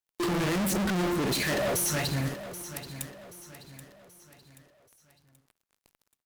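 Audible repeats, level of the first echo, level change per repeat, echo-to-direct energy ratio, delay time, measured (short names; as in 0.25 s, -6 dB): 4, -13.0 dB, -7.5 dB, -12.0 dB, 0.78 s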